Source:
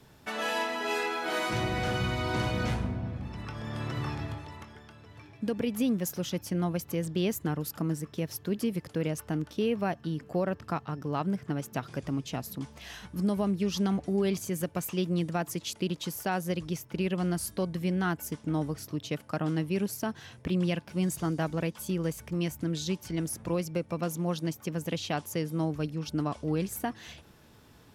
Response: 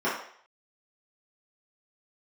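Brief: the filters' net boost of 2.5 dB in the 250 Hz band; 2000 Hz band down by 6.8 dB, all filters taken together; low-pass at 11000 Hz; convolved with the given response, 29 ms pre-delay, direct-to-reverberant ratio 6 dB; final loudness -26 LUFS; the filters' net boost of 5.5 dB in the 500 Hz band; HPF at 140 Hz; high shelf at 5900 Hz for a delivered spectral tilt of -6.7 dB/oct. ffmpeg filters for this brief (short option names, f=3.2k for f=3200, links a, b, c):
-filter_complex "[0:a]highpass=140,lowpass=11k,equalizer=f=250:t=o:g=3,equalizer=f=500:t=o:g=6.5,equalizer=f=2k:t=o:g=-9,highshelf=f=5.9k:g=-9,asplit=2[a][b];[1:a]atrim=start_sample=2205,adelay=29[c];[b][c]afir=irnorm=-1:irlink=0,volume=-19.5dB[d];[a][d]amix=inputs=2:normalize=0,volume=2.5dB"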